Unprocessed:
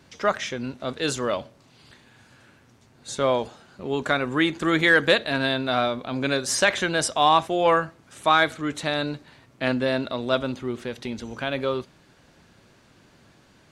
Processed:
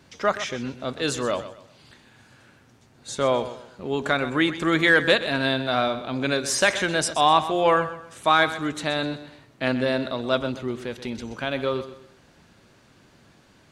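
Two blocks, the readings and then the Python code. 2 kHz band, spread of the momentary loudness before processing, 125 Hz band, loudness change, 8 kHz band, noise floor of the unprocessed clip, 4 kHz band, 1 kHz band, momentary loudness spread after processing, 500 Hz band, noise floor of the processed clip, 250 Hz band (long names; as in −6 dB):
0.0 dB, 13 LU, +0.5 dB, 0.0 dB, 0.0 dB, −57 dBFS, 0.0 dB, 0.0 dB, 13 LU, +0.5 dB, −56 dBFS, 0.0 dB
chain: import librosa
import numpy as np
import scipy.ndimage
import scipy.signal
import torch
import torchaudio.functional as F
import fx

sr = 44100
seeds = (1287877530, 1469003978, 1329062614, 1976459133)

y = fx.echo_feedback(x, sr, ms=127, feedback_pct=33, wet_db=-13)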